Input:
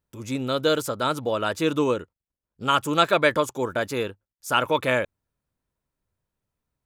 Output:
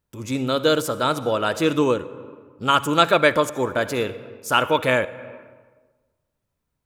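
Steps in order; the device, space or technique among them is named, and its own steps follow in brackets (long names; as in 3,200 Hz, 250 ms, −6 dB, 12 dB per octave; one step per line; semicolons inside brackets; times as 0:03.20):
compressed reverb return (on a send at −9 dB: convolution reverb RT60 1.3 s, pre-delay 50 ms + downward compressor 6 to 1, threshold −25 dBFS, peak gain reduction 9.5 dB)
on the sum: level +3 dB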